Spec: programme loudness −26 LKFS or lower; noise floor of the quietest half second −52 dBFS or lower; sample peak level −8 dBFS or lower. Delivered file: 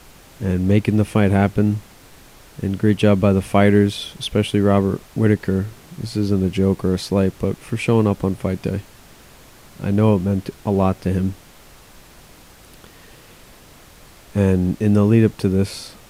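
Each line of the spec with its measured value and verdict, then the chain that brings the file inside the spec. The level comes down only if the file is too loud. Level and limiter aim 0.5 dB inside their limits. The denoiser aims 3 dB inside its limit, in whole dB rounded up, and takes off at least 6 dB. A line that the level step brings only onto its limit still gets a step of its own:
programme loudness −19.0 LKFS: out of spec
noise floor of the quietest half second −45 dBFS: out of spec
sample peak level −2.0 dBFS: out of spec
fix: level −7.5 dB

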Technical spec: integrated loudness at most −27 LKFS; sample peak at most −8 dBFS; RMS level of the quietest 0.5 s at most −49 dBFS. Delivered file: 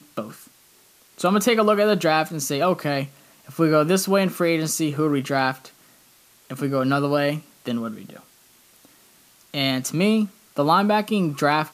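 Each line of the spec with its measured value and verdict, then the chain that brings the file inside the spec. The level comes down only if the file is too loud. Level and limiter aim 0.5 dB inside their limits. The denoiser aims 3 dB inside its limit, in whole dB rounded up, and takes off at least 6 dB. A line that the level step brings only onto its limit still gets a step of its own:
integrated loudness −21.5 LKFS: out of spec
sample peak −5.5 dBFS: out of spec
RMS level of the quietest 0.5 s −55 dBFS: in spec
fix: level −6 dB

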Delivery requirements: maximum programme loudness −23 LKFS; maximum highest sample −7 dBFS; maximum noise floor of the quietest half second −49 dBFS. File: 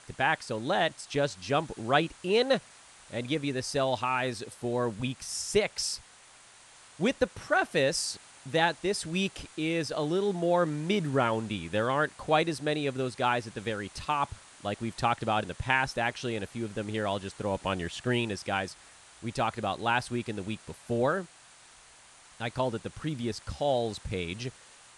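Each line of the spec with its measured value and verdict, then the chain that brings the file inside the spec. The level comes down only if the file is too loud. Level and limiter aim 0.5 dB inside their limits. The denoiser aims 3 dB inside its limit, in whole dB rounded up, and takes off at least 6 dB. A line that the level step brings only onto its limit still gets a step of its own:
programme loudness −30.5 LKFS: in spec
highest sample −9.5 dBFS: in spec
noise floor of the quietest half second −55 dBFS: in spec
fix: no processing needed

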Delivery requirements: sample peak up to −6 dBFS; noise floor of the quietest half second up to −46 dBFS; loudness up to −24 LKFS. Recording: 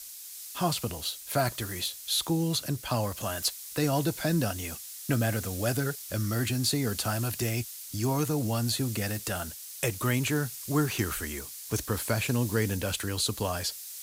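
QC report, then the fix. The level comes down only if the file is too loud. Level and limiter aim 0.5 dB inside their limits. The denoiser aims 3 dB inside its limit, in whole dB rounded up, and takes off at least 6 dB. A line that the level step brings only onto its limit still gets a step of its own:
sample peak −13.5 dBFS: in spec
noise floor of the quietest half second −44 dBFS: out of spec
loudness −29.5 LKFS: in spec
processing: broadband denoise 6 dB, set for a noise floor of −44 dBFS

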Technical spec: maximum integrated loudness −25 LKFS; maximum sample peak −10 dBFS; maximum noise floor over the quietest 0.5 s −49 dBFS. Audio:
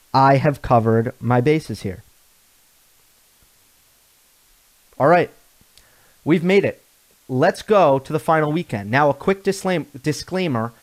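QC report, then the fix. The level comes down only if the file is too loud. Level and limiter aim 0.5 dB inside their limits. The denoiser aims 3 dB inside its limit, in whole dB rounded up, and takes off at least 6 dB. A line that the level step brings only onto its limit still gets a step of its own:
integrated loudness −19.0 LKFS: out of spec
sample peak −4.5 dBFS: out of spec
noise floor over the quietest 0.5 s −56 dBFS: in spec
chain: level −6.5 dB

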